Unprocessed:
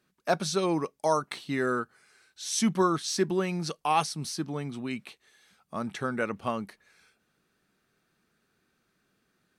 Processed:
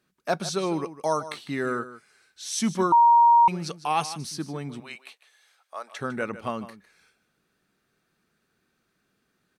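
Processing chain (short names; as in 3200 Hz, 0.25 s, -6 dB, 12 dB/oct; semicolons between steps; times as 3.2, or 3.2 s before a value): 4.8–5.99 HPF 530 Hz 24 dB/oct; echo 0.153 s -14.5 dB; 2.92–3.48 bleep 940 Hz -12.5 dBFS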